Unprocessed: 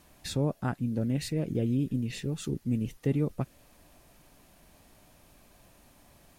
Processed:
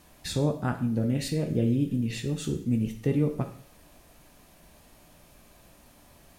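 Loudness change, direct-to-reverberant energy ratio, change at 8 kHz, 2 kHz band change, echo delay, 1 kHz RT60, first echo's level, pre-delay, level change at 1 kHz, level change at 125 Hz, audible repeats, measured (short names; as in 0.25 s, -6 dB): +3.0 dB, 5.0 dB, +3.5 dB, +3.5 dB, none, 0.55 s, none, 11 ms, +3.0 dB, +2.5 dB, none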